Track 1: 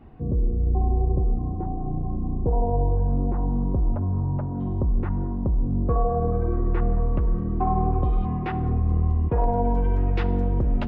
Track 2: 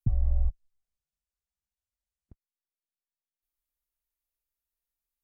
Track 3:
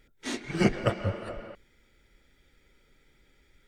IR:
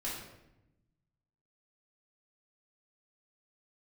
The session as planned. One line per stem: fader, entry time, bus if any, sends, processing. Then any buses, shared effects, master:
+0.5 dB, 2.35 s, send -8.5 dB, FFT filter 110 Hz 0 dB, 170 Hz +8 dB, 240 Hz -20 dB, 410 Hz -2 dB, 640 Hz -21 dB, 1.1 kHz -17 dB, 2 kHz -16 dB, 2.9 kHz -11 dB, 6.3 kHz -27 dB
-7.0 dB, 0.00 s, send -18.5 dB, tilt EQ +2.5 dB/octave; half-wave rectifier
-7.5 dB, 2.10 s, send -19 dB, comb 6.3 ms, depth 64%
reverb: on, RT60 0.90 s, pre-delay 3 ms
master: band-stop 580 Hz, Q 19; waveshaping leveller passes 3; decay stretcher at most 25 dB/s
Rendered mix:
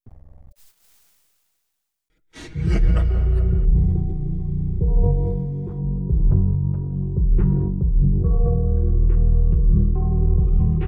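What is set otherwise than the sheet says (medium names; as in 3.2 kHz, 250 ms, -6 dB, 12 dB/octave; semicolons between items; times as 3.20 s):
stem 2: send off; master: missing waveshaping leveller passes 3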